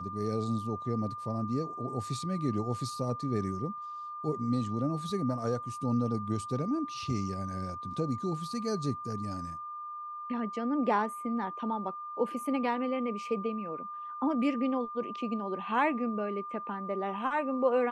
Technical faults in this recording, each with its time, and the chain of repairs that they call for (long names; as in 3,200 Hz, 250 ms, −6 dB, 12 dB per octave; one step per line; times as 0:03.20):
whistle 1,200 Hz −38 dBFS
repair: notch filter 1,200 Hz, Q 30